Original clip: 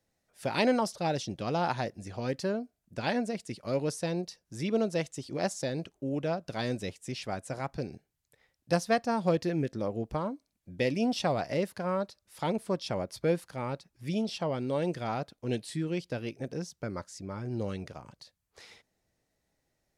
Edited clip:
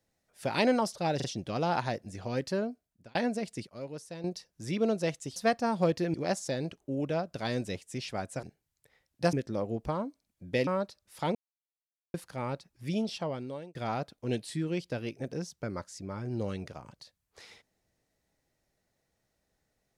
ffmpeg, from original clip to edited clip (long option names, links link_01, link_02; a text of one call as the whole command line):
ffmpeg -i in.wav -filter_complex "[0:a]asplit=14[link_01][link_02][link_03][link_04][link_05][link_06][link_07][link_08][link_09][link_10][link_11][link_12][link_13][link_14];[link_01]atrim=end=1.202[link_15];[link_02]atrim=start=1.158:end=1.202[link_16];[link_03]atrim=start=1.158:end=3.07,asetpts=PTS-STARTPTS,afade=type=out:start_time=1.452:duration=0.46[link_17];[link_04]atrim=start=3.07:end=3.592,asetpts=PTS-STARTPTS,afade=type=in:duration=0.004:curve=hsin[link_18];[link_05]atrim=start=3.588:end=4.162,asetpts=PTS-STARTPTS,volume=-10.5dB[link_19];[link_06]atrim=start=4.158:end=5.282[link_20];[link_07]atrim=start=8.808:end=9.592[link_21];[link_08]atrim=start=5.278:end=7.572[link_22];[link_09]atrim=start=7.908:end=8.812[link_23];[link_10]atrim=start=9.588:end=10.932[link_24];[link_11]atrim=start=11.868:end=12.55,asetpts=PTS-STARTPTS,afade=type=out:start_time=0.678:duration=0.004:curve=hsin[link_25];[link_12]atrim=start=12.55:end=13.34,asetpts=PTS-STARTPTS,volume=0[link_26];[link_13]atrim=start=13.34:end=14.95,asetpts=PTS-STARTPTS,afade=type=in:duration=0.004:curve=hsin,afade=type=out:start_time=0.7:duration=0.91:curve=qsin[link_27];[link_14]atrim=start=14.95,asetpts=PTS-STARTPTS,afade=type=in:duration=0.004:curve=hsin[link_28];[link_15][link_16]acrossfade=duration=0.004:curve1=hsin:curve2=hsin[link_29];[link_17][link_18]concat=n=2:v=0:a=1[link_30];[link_29][link_30]acrossfade=duration=0.004:curve1=hsin:curve2=hsin[link_31];[link_31][link_19]acrossfade=duration=0.004:curve1=hsin:curve2=hsin[link_32];[link_32][link_20]acrossfade=duration=0.004:curve1=hsin:curve2=hsin[link_33];[link_33][link_21]acrossfade=duration=0.004:curve1=hsin:curve2=hsin[link_34];[link_34][link_22]acrossfade=duration=0.004:curve1=hsin:curve2=hsin[link_35];[link_35][link_23]acrossfade=duration=0.004:curve1=hsin:curve2=hsin[link_36];[link_36][link_24]acrossfade=duration=0.004:curve1=hsin:curve2=hsin[link_37];[link_25][link_26][link_27][link_28]concat=n=4:v=0:a=1[link_38];[link_37][link_38]acrossfade=duration=0.004:curve1=hsin:curve2=hsin" out.wav